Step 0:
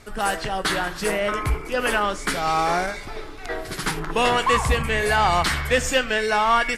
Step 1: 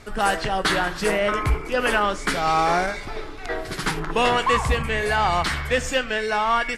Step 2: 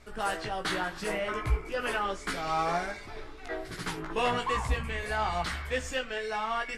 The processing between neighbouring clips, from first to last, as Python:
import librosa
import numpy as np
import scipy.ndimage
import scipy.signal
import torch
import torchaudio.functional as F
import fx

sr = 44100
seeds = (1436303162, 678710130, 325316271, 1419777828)

y1 = fx.high_shelf(x, sr, hz=9900.0, db=-9.5)
y1 = fx.rider(y1, sr, range_db=3, speed_s=2.0)
y2 = fx.chorus_voices(y1, sr, voices=4, hz=0.89, base_ms=17, depth_ms=1.7, mix_pct=40)
y2 = y2 * 10.0 ** (-7.0 / 20.0)